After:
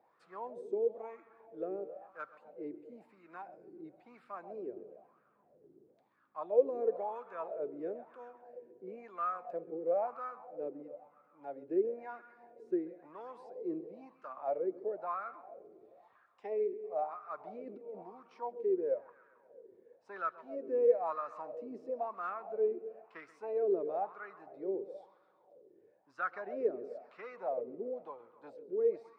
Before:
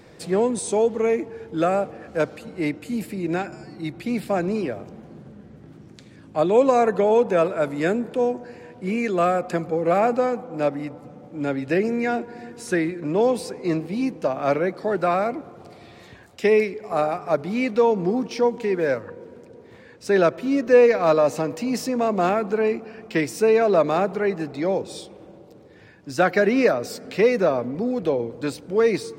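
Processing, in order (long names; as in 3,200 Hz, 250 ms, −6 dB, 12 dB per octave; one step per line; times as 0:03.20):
0:17.40–0:18.03: compressor whose output falls as the input rises −24 dBFS, ratio −0.5
bucket-brigade delay 133 ms, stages 4,096, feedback 68%, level −15.5 dB
LFO wah 1 Hz 370–1,300 Hz, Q 7.2
level −6.5 dB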